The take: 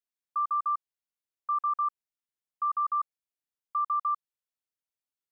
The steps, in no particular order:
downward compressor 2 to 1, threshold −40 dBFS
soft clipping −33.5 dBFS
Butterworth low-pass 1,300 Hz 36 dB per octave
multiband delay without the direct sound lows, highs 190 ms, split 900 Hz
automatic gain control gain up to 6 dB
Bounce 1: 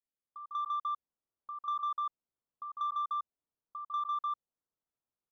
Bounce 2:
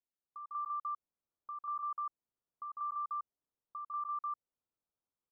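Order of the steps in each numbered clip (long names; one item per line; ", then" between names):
Butterworth low-pass, then downward compressor, then multiband delay without the direct sound, then soft clipping, then automatic gain control
downward compressor, then multiband delay without the direct sound, then automatic gain control, then soft clipping, then Butterworth low-pass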